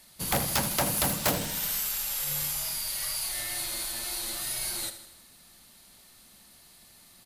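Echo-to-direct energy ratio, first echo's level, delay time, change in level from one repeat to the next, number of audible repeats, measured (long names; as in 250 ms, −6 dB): −10.5 dB, −12.0 dB, 79 ms, −5.0 dB, 5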